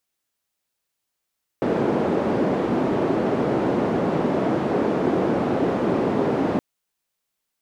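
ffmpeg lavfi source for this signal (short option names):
-f lavfi -i "anoisesrc=c=white:d=4.97:r=44100:seed=1,highpass=f=220,lowpass=f=380,volume=3.7dB"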